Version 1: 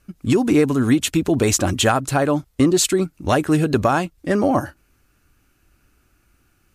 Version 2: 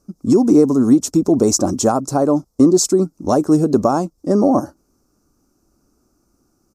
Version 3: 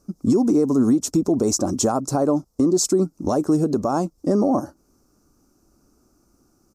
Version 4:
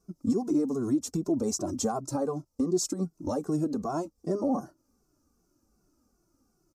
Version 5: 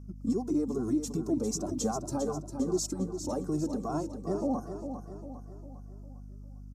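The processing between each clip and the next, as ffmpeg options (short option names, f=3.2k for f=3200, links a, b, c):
-af "firequalizer=gain_entry='entry(100,0);entry(210,12);entry(1200,5);entry(1700,-12);entry(3000,-15);entry(5400,12);entry(9600,2)':delay=0.05:min_phase=1,volume=-6.5dB"
-af "alimiter=limit=-11.5dB:level=0:latency=1:release=311,volume=1.5dB"
-filter_complex "[0:a]asplit=2[a][b];[b]adelay=2.2,afreqshift=-2.6[c];[a][c]amix=inputs=2:normalize=1,volume=-6.5dB"
-af "aecho=1:1:402|804|1206|1608|2010:0.376|0.18|0.0866|0.0416|0.02,aeval=exprs='val(0)+0.00891*(sin(2*PI*50*n/s)+sin(2*PI*2*50*n/s)/2+sin(2*PI*3*50*n/s)/3+sin(2*PI*4*50*n/s)/4+sin(2*PI*5*50*n/s)/5)':c=same,volume=-3dB"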